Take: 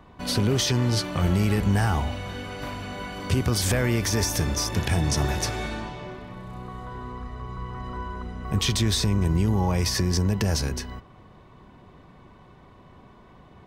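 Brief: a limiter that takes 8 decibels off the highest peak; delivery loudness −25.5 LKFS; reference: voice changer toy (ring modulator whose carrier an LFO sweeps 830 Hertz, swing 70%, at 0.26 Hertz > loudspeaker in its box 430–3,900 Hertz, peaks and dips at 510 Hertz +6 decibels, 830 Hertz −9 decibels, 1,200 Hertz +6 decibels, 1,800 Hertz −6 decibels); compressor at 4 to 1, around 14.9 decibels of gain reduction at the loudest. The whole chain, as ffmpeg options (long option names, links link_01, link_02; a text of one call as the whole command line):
ffmpeg -i in.wav -af "acompressor=threshold=-37dB:ratio=4,alimiter=level_in=6dB:limit=-24dB:level=0:latency=1,volume=-6dB,aeval=exprs='val(0)*sin(2*PI*830*n/s+830*0.7/0.26*sin(2*PI*0.26*n/s))':channel_layout=same,highpass=430,equalizer=frequency=510:width_type=q:width=4:gain=6,equalizer=frequency=830:width_type=q:width=4:gain=-9,equalizer=frequency=1200:width_type=q:width=4:gain=6,equalizer=frequency=1800:width_type=q:width=4:gain=-6,lowpass=frequency=3900:width=0.5412,lowpass=frequency=3900:width=1.3066,volume=17.5dB" out.wav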